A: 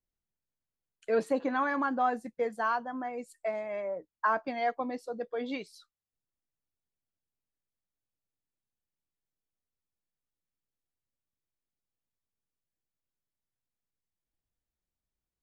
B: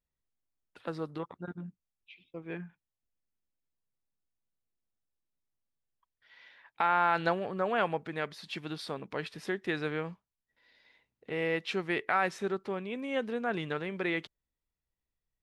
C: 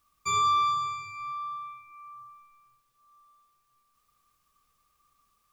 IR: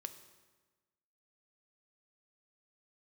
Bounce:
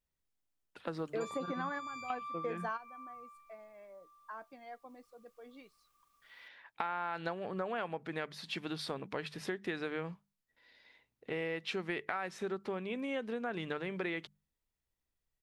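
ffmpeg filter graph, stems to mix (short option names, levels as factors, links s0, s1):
-filter_complex "[0:a]adelay=50,volume=0.708[s0];[1:a]bandreject=f=50:t=h:w=6,bandreject=f=100:t=h:w=6,bandreject=f=150:t=h:w=6,bandreject=f=200:t=h:w=6,volume=1.12,asplit=2[s1][s2];[2:a]equalizer=f=82:t=o:w=1.4:g=-8.5,acompressor=threshold=0.0158:ratio=6,adelay=950,volume=0.668[s3];[s2]apad=whole_len=682505[s4];[s0][s4]sidechaingate=range=0.158:threshold=0.002:ratio=16:detection=peak[s5];[s5][s1][s3]amix=inputs=3:normalize=0,acompressor=threshold=0.02:ratio=6"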